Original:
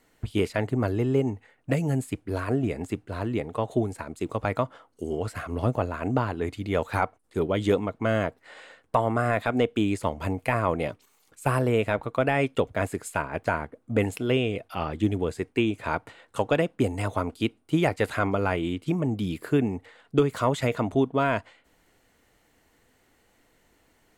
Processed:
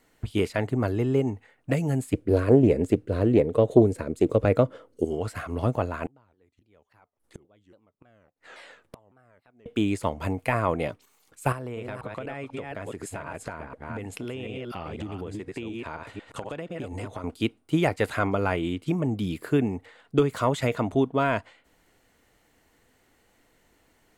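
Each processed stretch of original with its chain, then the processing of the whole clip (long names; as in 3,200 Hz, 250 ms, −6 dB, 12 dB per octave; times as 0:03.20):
0:02.13–0:05.05: low shelf with overshoot 630 Hz +6.5 dB, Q 3 + highs frequency-modulated by the lows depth 0.18 ms
0:06.06–0:09.66: gate with flip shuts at −27 dBFS, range −35 dB + pitch modulation by a square or saw wave saw down 3.6 Hz, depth 250 cents
0:11.52–0:17.24: delay that plays each chunk backwards 246 ms, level −5 dB + Bessel low-pass filter 9,700 Hz + downward compressor 12 to 1, threshold −30 dBFS
whole clip: no processing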